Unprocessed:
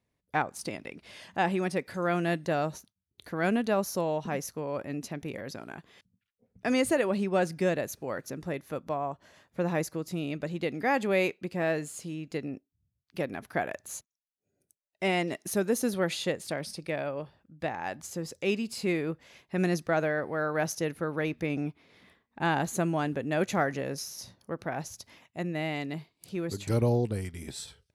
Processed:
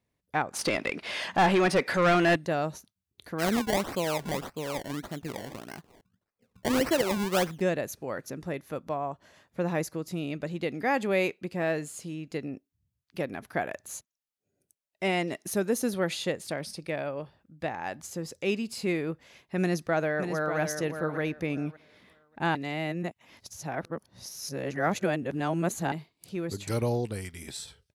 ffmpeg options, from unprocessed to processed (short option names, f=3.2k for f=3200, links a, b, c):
-filter_complex "[0:a]asettb=1/sr,asplit=3[a][b][c];[a]atrim=end=0.534[d];[b]atrim=start=0.53:end=2.36,asetpts=PTS-STARTPTS,afade=t=in:d=0.004:c=qsin,afade=t=out:st=1.826:d=0.004:c=qsin,asplit=2[e][f];[f]highpass=f=720:p=1,volume=24dB,asoftclip=type=tanh:threshold=-14dB[g];[e][g]amix=inputs=2:normalize=0,lowpass=f=2.9k:p=1,volume=-6dB[h];[c]atrim=start=2.356[i];[d][h]acrossfade=d=0.004:c1=hsin:c2=qsin[j];[j][i]acrossfade=d=0.004:c1=qsin:c2=hsin,asplit=3[k][l][m];[k]afade=t=out:st=3.38:d=0.02[n];[l]acrusher=samples=24:mix=1:aa=0.000001:lfo=1:lforange=24:lforate=1.7,afade=t=in:st=3.38:d=0.02,afade=t=out:st=7.6:d=0.02[o];[m]afade=t=in:st=7.6:d=0.02[p];[n][o][p]amix=inputs=3:normalize=0,asplit=2[q][r];[r]afade=t=in:st=19.6:d=0.01,afade=t=out:st=20.58:d=0.01,aecho=0:1:590|1180|1770:0.446684|0.0893367|0.0178673[s];[q][s]amix=inputs=2:normalize=0,asettb=1/sr,asplit=3[t][u][v];[t]atrim=end=26.674[w];[u]atrim=start=26.67:end=27.57,asetpts=PTS-STARTPTS,afade=t=in:d=0.004:c=qsin,afade=t=out:st=0.896:d=0.004:c=qsin,tiltshelf=f=780:g=-4[x];[v]atrim=start=27.566[y];[w][x]acrossfade=d=0.004:c1=hsin:c2=qsin[z];[z][y]acrossfade=d=0.004:c1=qsin:c2=hsin,asplit=3[aa][ab][ac];[aa]atrim=end=22.552[ad];[ab]atrim=start=22.548:end=25.922,asetpts=PTS-STARTPTS,areverse[ae];[ac]atrim=start=25.918[af];[ad][ae]acrossfade=d=0.004:c1=hsin:c2=hsin[ag];[ag][af]acrossfade=d=0.004:c1=hsin:c2=hsin"